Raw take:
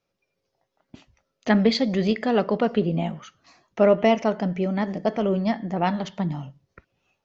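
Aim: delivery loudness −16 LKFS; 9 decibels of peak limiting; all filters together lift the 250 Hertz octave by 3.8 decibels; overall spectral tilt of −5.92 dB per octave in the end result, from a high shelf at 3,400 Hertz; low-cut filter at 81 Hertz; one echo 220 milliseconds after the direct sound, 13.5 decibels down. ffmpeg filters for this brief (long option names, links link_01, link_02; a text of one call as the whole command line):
ffmpeg -i in.wav -af "highpass=81,equalizer=frequency=250:width_type=o:gain=5,highshelf=frequency=3400:gain=4.5,alimiter=limit=-11dB:level=0:latency=1,aecho=1:1:220:0.211,volume=6.5dB" out.wav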